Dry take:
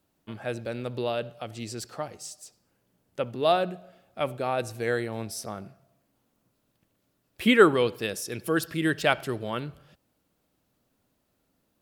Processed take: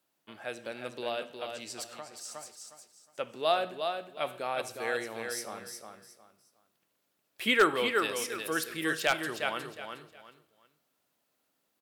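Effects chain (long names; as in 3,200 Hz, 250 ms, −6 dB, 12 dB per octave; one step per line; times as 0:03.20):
repeating echo 361 ms, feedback 26%, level −6 dB
convolution reverb, pre-delay 3 ms, DRR 12 dB
0:01.83–0:02.35: downward compressor 2 to 1, threshold −38 dBFS, peak gain reduction 6.5 dB
high-pass filter 810 Hz 6 dB per octave
wave folding −12 dBFS
level −1.5 dB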